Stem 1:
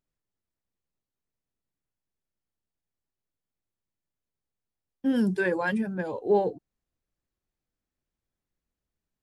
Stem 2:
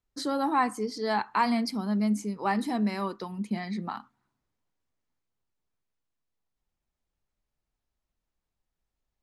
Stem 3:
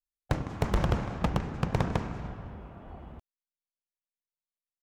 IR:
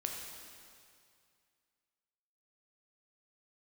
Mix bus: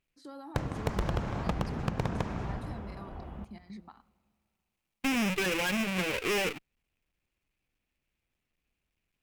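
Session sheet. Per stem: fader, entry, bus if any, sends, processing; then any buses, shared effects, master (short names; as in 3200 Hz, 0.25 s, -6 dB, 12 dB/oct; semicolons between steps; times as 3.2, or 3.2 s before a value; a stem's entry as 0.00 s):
+2.0 dB, 0.00 s, no send, half-waves squared off; bell 2500 Hz +15 dB 0.74 oct; tube stage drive 23 dB, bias 0.7
-9.5 dB, 0.00 s, send -20 dB, level quantiser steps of 17 dB; limiter -29.5 dBFS, peak gain reduction 7.5 dB
0.0 dB, 0.25 s, send -10.5 dB, dry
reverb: on, RT60 2.3 s, pre-delay 7 ms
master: compressor 6:1, threshold -27 dBFS, peak gain reduction 8 dB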